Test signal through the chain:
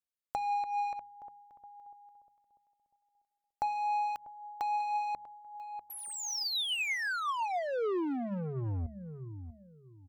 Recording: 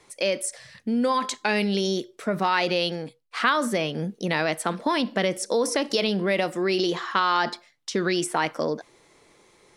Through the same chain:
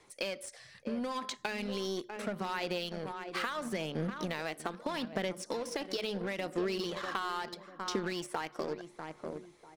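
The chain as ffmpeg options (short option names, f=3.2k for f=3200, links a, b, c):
-filter_complex "[0:a]asplit=2[a][b];[b]adelay=644,lowpass=f=1k:p=1,volume=-11.5dB,asplit=2[c][d];[d]adelay=644,lowpass=f=1k:p=1,volume=0.36,asplit=2[e][f];[f]adelay=644,lowpass=f=1k:p=1,volume=0.36,asplit=2[g][h];[h]adelay=644,lowpass=f=1k:p=1,volume=0.36[i];[c][e][g][i]amix=inputs=4:normalize=0[j];[a][j]amix=inputs=2:normalize=0,acompressor=threshold=-28dB:ratio=20,asplit=2[k][l];[l]acrusher=bits=4:mix=0:aa=0.5,volume=-5dB[m];[k][m]amix=inputs=2:normalize=0,bandreject=f=71.42:t=h:w=4,bandreject=f=142.84:t=h:w=4,bandreject=f=214.26:t=h:w=4,acrossover=split=5900[n][o];[o]acompressor=threshold=-39dB:ratio=4:attack=1:release=60[p];[n][p]amix=inputs=2:normalize=0,aphaser=in_gain=1:out_gain=1:delay=2.7:decay=0.27:speed=0.76:type=sinusoidal,volume=-7.5dB"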